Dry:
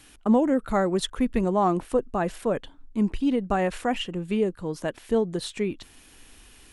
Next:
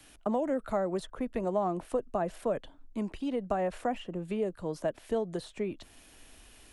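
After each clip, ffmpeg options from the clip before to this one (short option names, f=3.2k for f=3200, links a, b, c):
-filter_complex "[0:a]equalizer=f=630:w=3.7:g=8,acrossover=split=160|430|1400[a][b][c][d];[a]acompressor=threshold=-41dB:ratio=4[e];[b]acompressor=threshold=-32dB:ratio=4[f];[c]acompressor=threshold=-26dB:ratio=4[g];[d]acompressor=threshold=-45dB:ratio=4[h];[e][f][g][h]amix=inputs=4:normalize=0,volume=-4dB"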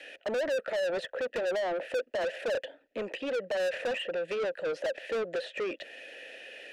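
-filter_complex "[0:a]asplit=3[a][b][c];[a]bandpass=f=530:t=q:w=8,volume=0dB[d];[b]bandpass=f=1.84k:t=q:w=8,volume=-6dB[e];[c]bandpass=f=2.48k:t=q:w=8,volume=-9dB[f];[d][e][f]amix=inputs=3:normalize=0,asplit=2[g][h];[h]highpass=f=720:p=1,volume=33dB,asoftclip=type=tanh:threshold=-23.5dB[i];[g][i]amix=inputs=2:normalize=0,lowpass=f=4.9k:p=1,volume=-6dB"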